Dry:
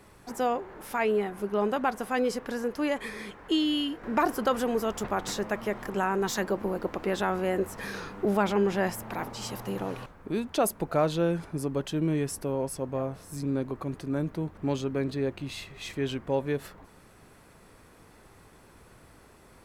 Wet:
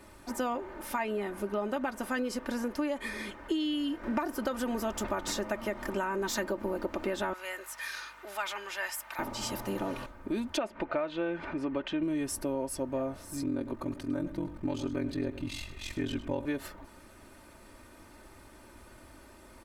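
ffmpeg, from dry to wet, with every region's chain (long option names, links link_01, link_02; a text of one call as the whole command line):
ffmpeg -i in.wav -filter_complex "[0:a]asettb=1/sr,asplit=3[link_01][link_02][link_03];[link_01]atrim=end=7.334[link_04];[link_02]atrim=start=7.33:end=9.19,asetpts=PTS-STARTPTS,afade=type=in:duration=0.004:curve=qsin,afade=type=out:start_time=1.856:duration=0.004:curve=qsin,highpass=1400,aeval=exprs='val(0)+0.000355*(sin(2*PI*50*n/s)+sin(2*PI*2*50*n/s)/2+sin(2*PI*3*50*n/s)/3+sin(2*PI*4*50*n/s)/4+sin(2*PI*5*50*n/s)/5)':channel_layout=same,asoftclip=type=hard:threshold=-22dB[link_05];[link_03]atrim=start=9.186[link_06];[link_04][link_05]acrossfade=duration=0.004:curve1=hsin:curve2=qsin[link_07];[link_07][link_06]acrossfade=duration=0.004:curve1=qsin:curve2=hsin,asettb=1/sr,asplit=3[link_08][link_09][link_10];[link_08]atrim=end=10.574[link_11];[link_09]atrim=start=10.57:end=12.03,asetpts=PTS-STARTPTS,afade=type=in:duration=0.004:curve=qsin,afade=type=out:start_time=1.456:duration=0.004:curve=qsin,lowshelf=frequency=190:gain=-8.5,acompressor=mode=upward:threshold=-31dB:ratio=2.5:attack=3.2:release=140:knee=2.83:detection=peak,lowpass=frequency=2500:width_type=q:width=1.6[link_12];[link_10]atrim=start=12.026[link_13];[link_11][link_12]acrossfade=duration=0.004:curve1=hsin:curve2=qsin[link_14];[link_14][link_13]acrossfade=duration=0.004:curve1=qsin:curve2=hsin,asettb=1/sr,asplit=3[link_15][link_16][link_17];[link_15]atrim=end=13.424[link_18];[link_16]atrim=start=13.42:end=16.45,asetpts=PTS-STARTPTS,afade=type=in:duration=0.004:curve=qsin,afade=type=out:start_time=3.026:duration=0.004:curve=qsin,asubboost=boost=2.5:cutoff=240,aeval=exprs='val(0)*sin(2*PI*22*n/s)':channel_layout=same,aecho=1:1:104:0.188,atrim=end_sample=133623[link_19];[link_17]atrim=start=16.446[link_20];[link_18][link_19]acrossfade=duration=0.004:curve1=hsin:curve2=qsin[link_21];[link_21][link_20]acrossfade=duration=0.004:curve1=qsin:curve2=hsin,aecho=1:1:3.3:0.65,acompressor=threshold=-28dB:ratio=10" out.wav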